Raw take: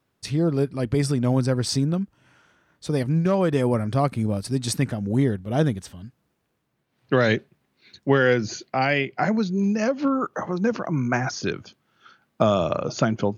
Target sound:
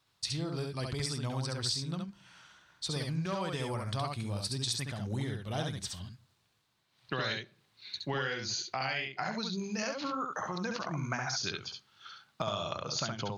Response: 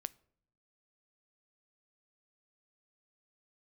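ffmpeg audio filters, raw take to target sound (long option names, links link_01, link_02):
-filter_complex "[0:a]equalizer=frequency=250:width_type=o:width=1:gain=-8,equalizer=frequency=500:width_type=o:width=1:gain=-5,equalizer=frequency=1000:width_type=o:width=1:gain=4,equalizer=frequency=4000:width_type=o:width=1:gain=12,equalizer=frequency=8000:width_type=o:width=1:gain=5,acompressor=threshold=-30dB:ratio=4,asplit=2[link_01][link_02];[1:a]atrim=start_sample=2205,adelay=68[link_03];[link_02][link_03]afir=irnorm=-1:irlink=0,volume=-1dB[link_04];[link_01][link_04]amix=inputs=2:normalize=0,volume=-4dB"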